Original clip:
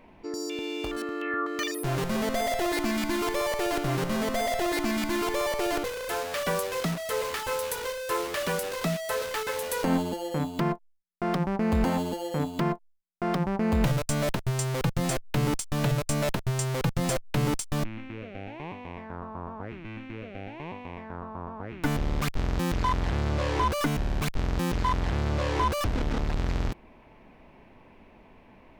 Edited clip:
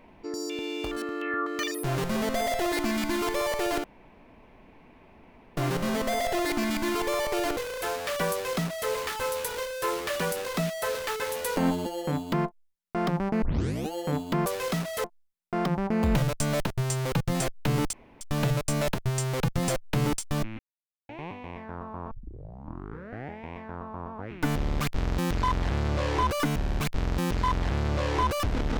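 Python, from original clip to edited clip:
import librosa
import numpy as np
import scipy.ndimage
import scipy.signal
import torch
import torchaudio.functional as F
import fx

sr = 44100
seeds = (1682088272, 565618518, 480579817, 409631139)

y = fx.edit(x, sr, fx.insert_room_tone(at_s=3.84, length_s=1.73),
    fx.duplicate(start_s=6.58, length_s=0.58, to_s=12.73),
    fx.tape_start(start_s=11.69, length_s=0.5),
    fx.insert_room_tone(at_s=15.62, length_s=0.28),
    fx.silence(start_s=18.0, length_s=0.5),
    fx.tape_start(start_s=19.52, length_s=1.44), tone=tone)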